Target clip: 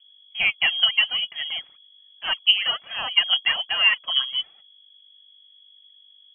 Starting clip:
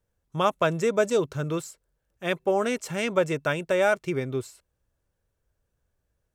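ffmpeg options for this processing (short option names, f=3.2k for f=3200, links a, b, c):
-af "aphaser=in_gain=1:out_gain=1:delay=4.5:decay=0.66:speed=1.2:type=triangular,aeval=exprs='val(0)+0.00251*(sin(2*PI*50*n/s)+sin(2*PI*2*50*n/s)/2+sin(2*PI*3*50*n/s)/3+sin(2*PI*4*50*n/s)/4+sin(2*PI*5*50*n/s)/5)':c=same,lowpass=f=2.9k:t=q:w=0.5098,lowpass=f=2.9k:t=q:w=0.6013,lowpass=f=2.9k:t=q:w=0.9,lowpass=f=2.9k:t=q:w=2.563,afreqshift=-3400"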